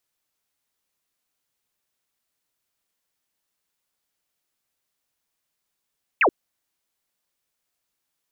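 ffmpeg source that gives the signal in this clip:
ffmpeg -f lavfi -i "aevalsrc='0.2*clip(t/0.002,0,1)*clip((0.08-t)/0.002,0,1)*sin(2*PI*2900*0.08/log(290/2900)*(exp(log(290/2900)*t/0.08)-1))':duration=0.08:sample_rate=44100" out.wav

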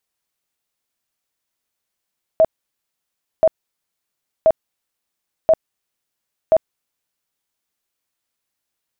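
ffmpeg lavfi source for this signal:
ffmpeg -f lavfi -i "aevalsrc='0.398*sin(2*PI*642*mod(t,1.03))*lt(mod(t,1.03),30/642)':duration=5.15:sample_rate=44100" out.wav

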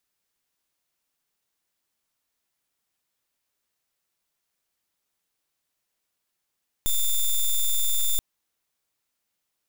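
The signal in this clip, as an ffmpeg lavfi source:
ffmpeg -f lavfi -i "aevalsrc='0.0841*(2*lt(mod(3560*t,1),0.08)-1)':duration=1.33:sample_rate=44100" out.wav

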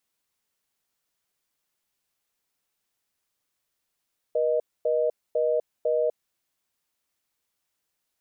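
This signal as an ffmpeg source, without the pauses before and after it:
ffmpeg -f lavfi -i "aevalsrc='0.0668*(sin(2*PI*480*t)+sin(2*PI*620*t))*clip(min(mod(t,0.5),0.25-mod(t,0.5))/0.005,0,1)':duration=1.99:sample_rate=44100" out.wav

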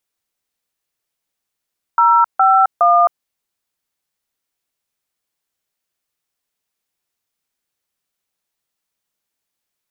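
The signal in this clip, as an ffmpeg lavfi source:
ffmpeg -f lavfi -i "aevalsrc='0.282*clip(min(mod(t,0.414),0.264-mod(t,0.414))/0.002,0,1)*(eq(floor(t/0.414),0)*(sin(2*PI*941*mod(t,0.414))+sin(2*PI*1336*mod(t,0.414)))+eq(floor(t/0.414),1)*(sin(2*PI*770*mod(t,0.414))+sin(2*PI*1336*mod(t,0.414)))+eq(floor(t/0.414),2)*(sin(2*PI*697*mod(t,0.414))+sin(2*PI*1209*mod(t,0.414))))':duration=1.242:sample_rate=44100" out.wav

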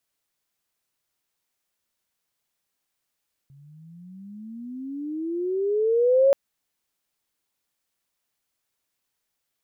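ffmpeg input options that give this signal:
ffmpeg -f lavfi -i "aevalsrc='pow(10,(-13+34.5*(t/2.83-1))/20)*sin(2*PI*136*2.83/(24.5*log(2)/12)*(exp(24.5*log(2)/12*t/2.83)-1))':duration=2.83:sample_rate=44100" out.wav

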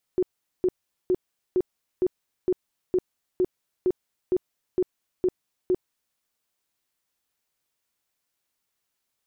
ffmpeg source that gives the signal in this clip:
ffmpeg -f lavfi -i "aevalsrc='0.126*sin(2*PI*366*mod(t,0.46))*lt(mod(t,0.46),17/366)':duration=5.98:sample_rate=44100" out.wav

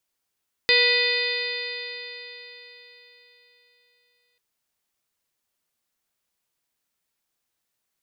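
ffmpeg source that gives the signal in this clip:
ffmpeg -f lavfi -i "aevalsrc='0.0708*pow(10,-3*t/4.01)*sin(2*PI*482.67*t)+0.0141*pow(10,-3*t/4.01)*sin(2*PI*969.38*t)+0.0141*pow(10,-3*t/4.01)*sin(2*PI*1464.11*t)+0.112*pow(10,-3*t/4.01)*sin(2*PI*1970.71*t)+0.0841*pow(10,-3*t/4.01)*sin(2*PI*2492.92*t)+0.0282*pow(10,-3*t/4.01)*sin(2*PI*3034.26*t)+0.0794*pow(10,-3*t/4.01)*sin(2*PI*3598.02*t)+0.0708*pow(10,-3*t/4.01)*sin(2*PI*4187.27*t)+0.0708*pow(10,-3*t/4.01)*sin(2*PI*4804.81*t)':duration=3.69:sample_rate=44100" out.wav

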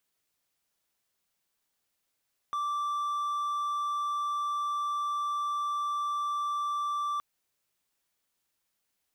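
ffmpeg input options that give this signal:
ffmpeg -f lavfi -i "aevalsrc='0.0473*(1-4*abs(mod(1170*t+0.25,1)-0.5))':duration=4.67:sample_rate=44100" out.wav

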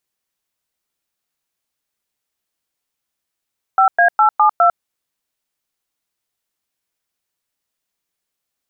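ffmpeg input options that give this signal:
ffmpeg -f lavfi -i "aevalsrc='0.282*clip(min(mod(t,0.205),0.1-mod(t,0.205))/0.002,0,1)*(eq(floor(t/0.205),0)*(sin(2*PI*770*mod(t,0.205))+sin(2*PI*1336*mod(t,0.205)))+eq(floor(t/0.205),1)*(sin(2*PI*697*mod(t,0.205))+sin(2*PI*1633*mod(t,0.205)))+eq(floor(t/0.205),2)*(sin(2*PI*852*mod(t,0.205))+sin(2*PI*1336*mod(t,0.205)))+eq(floor(t/0.205),3)*(sin(2*PI*852*mod(t,0.205))+sin(2*PI*1209*mod(t,0.205)))+eq(floor(t/0.205),4)*(sin(2*PI*697*mod(t,0.205))+sin(2*PI*1336*mod(t,0.205))))':duration=1.025:sample_rate=44100" out.wav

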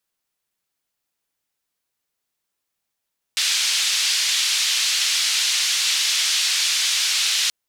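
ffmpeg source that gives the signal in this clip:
ffmpeg -f lavfi -i "anoisesrc=color=white:duration=4.13:sample_rate=44100:seed=1,highpass=frequency=3300,lowpass=frequency=4500,volume=-4.6dB" out.wav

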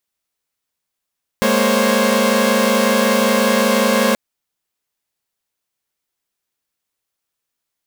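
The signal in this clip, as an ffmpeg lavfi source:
ffmpeg -f lavfi -i "aevalsrc='0.158*((2*mod(207.65*t,1)-1)+(2*mod(233.08*t,1)-1)+(2*mod(523.25*t,1)-1)+(2*mod(554.37*t,1)-1))':duration=2.73:sample_rate=44100" out.wav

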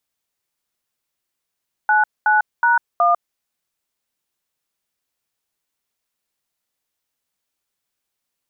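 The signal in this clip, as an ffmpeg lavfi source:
ffmpeg -f lavfi -i "aevalsrc='0.188*clip(min(mod(t,0.37),0.148-mod(t,0.37))/0.002,0,1)*(eq(floor(t/0.37),0)*(sin(2*PI*852*mod(t,0.37))+sin(2*PI*1477*mod(t,0.37)))+eq(floor(t/0.37),1)*(sin(2*PI*852*mod(t,0.37))+sin(2*PI*1477*mod(t,0.37)))+eq(floor(t/0.37),2)*(sin(2*PI*941*mod(t,0.37))+sin(2*PI*1477*mod(t,0.37)))+eq(floor(t/0.37),3)*(sin(2*PI*697*mod(t,0.37))+sin(2*PI*1209*mod(t,0.37))))':duration=1.48:sample_rate=44100" out.wav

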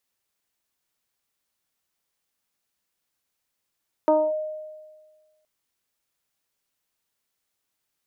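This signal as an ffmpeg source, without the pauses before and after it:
ffmpeg -f lavfi -i "aevalsrc='0.211*pow(10,-3*t/1.52)*sin(2*PI*618*t+1*clip(1-t/0.25,0,1)*sin(2*PI*0.5*618*t))':duration=1.37:sample_rate=44100" out.wav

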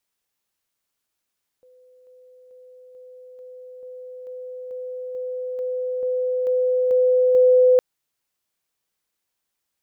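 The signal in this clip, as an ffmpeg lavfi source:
ffmpeg -f lavfi -i "aevalsrc='pow(10,(-50+3*floor(t/0.44))/20)*sin(2*PI*505*t)':duration=6.16:sample_rate=44100" out.wav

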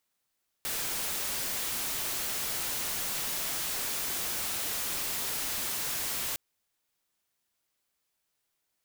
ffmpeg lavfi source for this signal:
ffmpeg -f lavfi -i "anoisesrc=color=white:amplitude=0.0388:duration=5.71:sample_rate=44100:seed=1" out.wav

